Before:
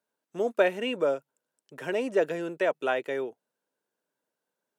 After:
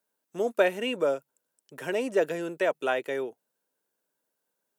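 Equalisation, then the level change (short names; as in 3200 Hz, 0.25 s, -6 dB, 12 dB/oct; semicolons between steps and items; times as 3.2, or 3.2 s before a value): high shelf 7900 Hz +10.5 dB; 0.0 dB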